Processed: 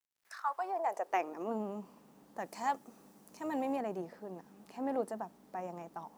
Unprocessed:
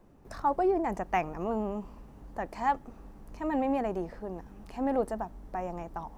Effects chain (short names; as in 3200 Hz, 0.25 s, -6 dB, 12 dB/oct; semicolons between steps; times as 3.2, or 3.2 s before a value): tone controls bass -11 dB, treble +5 dB, from 2.38 s treble +14 dB, from 3.75 s treble +4 dB; AM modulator 200 Hz, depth 15%; high-pass sweep 2500 Hz -> 180 Hz, 0.08–1.63; bit-crush 11-bit; gain -5 dB